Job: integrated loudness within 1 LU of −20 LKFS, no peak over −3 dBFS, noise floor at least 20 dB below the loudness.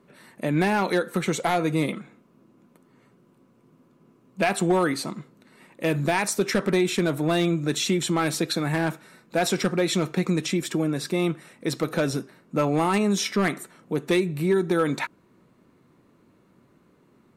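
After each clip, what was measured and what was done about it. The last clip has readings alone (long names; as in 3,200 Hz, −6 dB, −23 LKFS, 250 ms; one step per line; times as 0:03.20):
share of clipped samples 0.5%; peaks flattened at −14.0 dBFS; integrated loudness −25.0 LKFS; sample peak −14.0 dBFS; target loudness −20.0 LKFS
→ clipped peaks rebuilt −14 dBFS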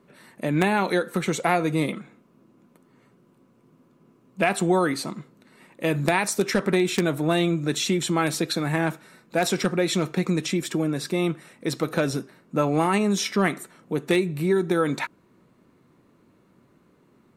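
share of clipped samples 0.0%; integrated loudness −24.5 LKFS; sample peak −5.0 dBFS; target loudness −20.0 LKFS
→ level +4.5 dB
brickwall limiter −3 dBFS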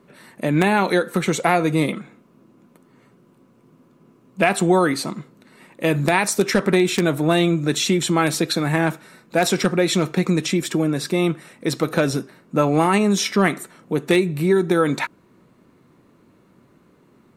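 integrated loudness −20.0 LKFS; sample peak −3.0 dBFS; background noise floor −56 dBFS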